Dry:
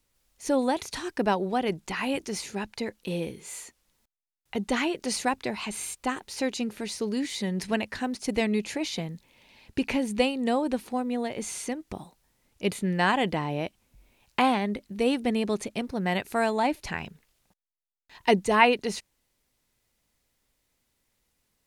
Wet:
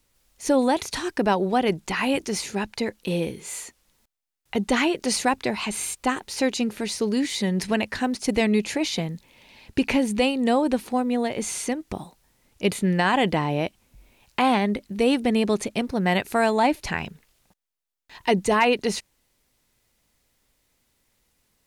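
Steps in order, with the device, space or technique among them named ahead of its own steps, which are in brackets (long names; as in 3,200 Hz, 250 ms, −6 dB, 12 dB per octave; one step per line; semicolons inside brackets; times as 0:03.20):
clipper into limiter (hard clipping −9 dBFS, distortion −32 dB; brickwall limiter −16 dBFS, peak gain reduction 7 dB)
level +5.5 dB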